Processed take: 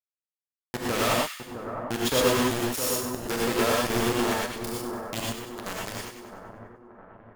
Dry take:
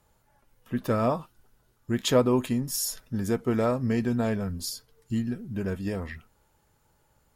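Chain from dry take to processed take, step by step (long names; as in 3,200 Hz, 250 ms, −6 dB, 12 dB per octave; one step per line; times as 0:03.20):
low-shelf EQ 310 Hz −4.5 dB
in parallel at −2 dB: downward compressor 10 to 1, threshold −40 dBFS, peak gain reduction 22.5 dB
on the sum: bit reduction 4 bits
pitch vibrato 1.1 Hz 8.3 cents
on a send: echo with a time of its own for lows and highs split 1,500 Hz, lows 659 ms, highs 97 ms, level −8.5 dB
on the sum: reverb whose tail is shaped and stops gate 140 ms rising, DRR −3 dB
level −4.5 dB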